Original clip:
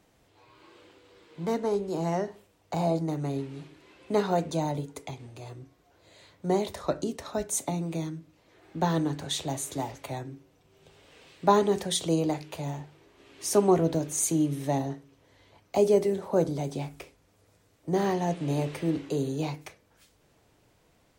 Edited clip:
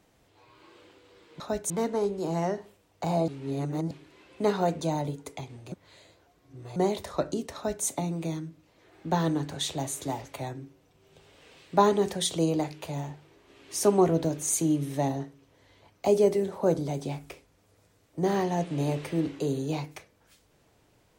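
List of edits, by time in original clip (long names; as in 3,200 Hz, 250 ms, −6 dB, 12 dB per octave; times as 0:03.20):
0:02.98–0:03.61: reverse
0:05.42–0:06.46: reverse
0:07.25–0:07.55: duplicate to 0:01.40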